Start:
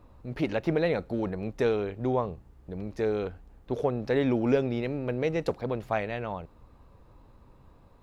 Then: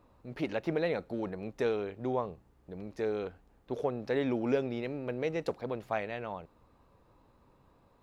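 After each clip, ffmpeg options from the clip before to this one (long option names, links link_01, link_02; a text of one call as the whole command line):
ffmpeg -i in.wav -af "lowshelf=frequency=110:gain=-11,volume=-4dB" out.wav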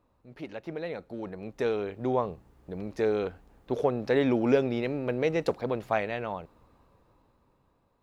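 ffmpeg -i in.wav -af "dynaudnorm=framelen=370:gausssize=9:maxgain=13dB,volume=-6.5dB" out.wav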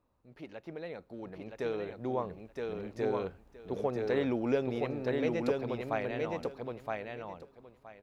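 ffmpeg -i in.wav -af "aecho=1:1:969|1938|2907:0.708|0.127|0.0229,volume=-6.5dB" out.wav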